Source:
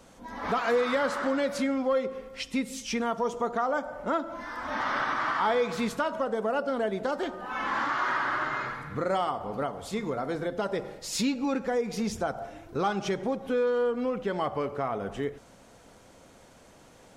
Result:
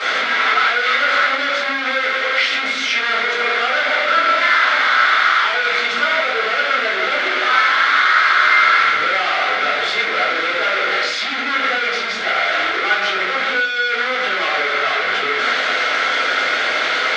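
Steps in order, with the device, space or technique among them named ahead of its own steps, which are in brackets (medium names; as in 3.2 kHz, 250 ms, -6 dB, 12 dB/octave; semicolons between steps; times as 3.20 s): hum notches 60/120/180/240 Hz; home computer beeper (one-bit comparator; cabinet simulation 660–4400 Hz, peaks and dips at 950 Hz -8 dB, 1.4 kHz +9 dB, 2.1 kHz +9 dB, 3.5 kHz +6 dB); simulated room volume 42 m³, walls mixed, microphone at 3 m; trim -1 dB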